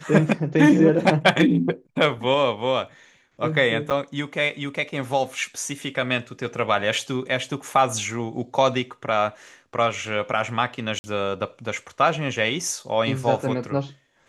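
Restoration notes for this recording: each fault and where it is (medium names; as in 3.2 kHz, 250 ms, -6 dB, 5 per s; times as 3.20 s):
3.90–3.91 s: dropout 8 ms
10.99–11.04 s: dropout 50 ms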